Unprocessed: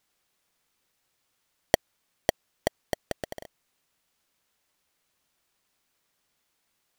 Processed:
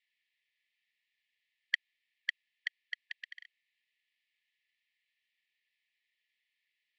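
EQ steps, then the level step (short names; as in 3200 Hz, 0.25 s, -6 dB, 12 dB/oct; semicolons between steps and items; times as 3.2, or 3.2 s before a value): brick-wall FIR band-pass 1700–8000 Hz; air absorption 440 m; +5.5 dB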